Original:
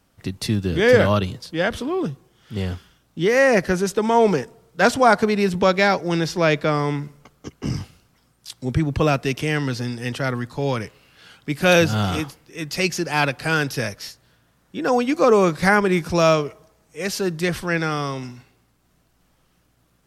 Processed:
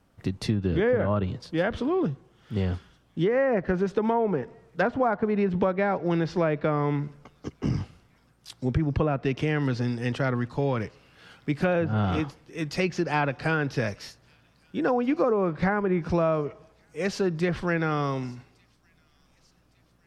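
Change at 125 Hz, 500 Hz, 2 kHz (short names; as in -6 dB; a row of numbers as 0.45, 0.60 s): -3.0, -6.5, -9.5 dB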